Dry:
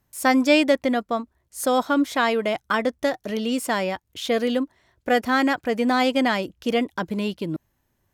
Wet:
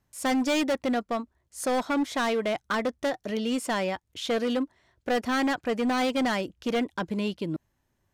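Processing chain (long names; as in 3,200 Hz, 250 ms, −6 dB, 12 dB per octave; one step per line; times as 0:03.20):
low-pass filter 10,000 Hz 12 dB per octave
hard clipping −19 dBFS, distortion −10 dB
level −3 dB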